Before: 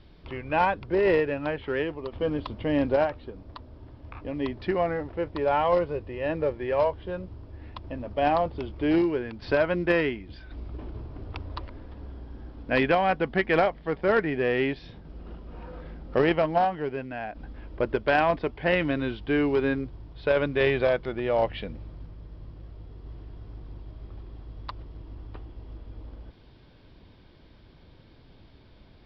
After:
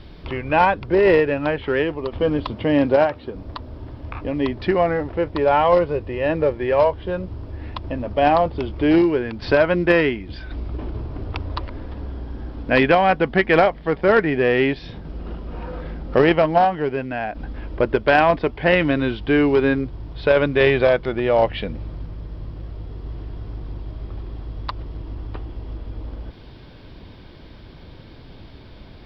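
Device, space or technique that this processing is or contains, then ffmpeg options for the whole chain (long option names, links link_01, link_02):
parallel compression: -filter_complex "[0:a]asplit=2[link_01][link_02];[link_02]acompressor=threshold=-41dB:ratio=6,volume=-2dB[link_03];[link_01][link_03]amix=inputs=2:normalize=0,asettb=1/sr,asplit=3[link_04][link_05][link_06];[link_04]atrim=end=2.514[link_07];[link_05]atrim=start=2.51:end=3.35,asetpts=PTS-STARTPTS,afade=type=in:duration=0.004:curve=qsin,afade=type=out:start_time=0.836:duration=0.004:curve=qsin,highpass=92[link_08];[link_06]atrim=start=3.346[link_09];[link_07][link_08]acrossfade=duration=0.004:curve1=hsin:curve2=qsin[link_10];[link_10][link_09]acrossfade=duration=0.004:curve1=qsin:curve2=hsin,volume=6.5dB"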